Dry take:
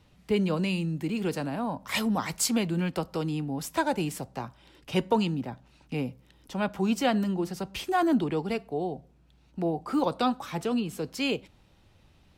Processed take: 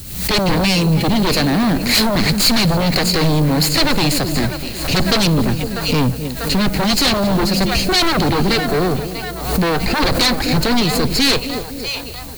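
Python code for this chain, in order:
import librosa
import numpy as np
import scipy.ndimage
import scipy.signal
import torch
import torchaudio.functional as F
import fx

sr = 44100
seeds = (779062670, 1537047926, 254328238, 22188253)

p1 = fx.lower_of_two(x, sr, delay_ms=0.43)
p2 = fx.harmonic_tremolo(p1, sr, hz=1.8, depth_pct=50, crossover_hz=420.0)
p3 = fx.echo_split(p2, sr, split_hz=630.0, low_ms=254, high_ms=644, feedback_pct=52, wet_db=-15.0)
p4 = fx.fold_sine(p3, sr, drive_db=18, ceiling_db=-14.0)
p5 = p3 + (p4 * librosa.db_to_amplitude(-5.5))
p6 = fx.peak_eq(p5, sr, hz=4200.0, db=13.5, octaves=0.33)
p7 = p6 + fx.echo_single(p6, sr, ms=275, db=-20.5, dry=0)
p8 = fx.dmg_noise_colour(p7, sr, seeds[0], colour='blue', level_db=-41.0)
p9 = fx.low_shelf(p8, sr, hz=110.0, db=7.5)
p10 = fx.pre_swell(p9, sr, db_per_s=65.0)
y = p10 * librosa.db_to_amplitude(4.0)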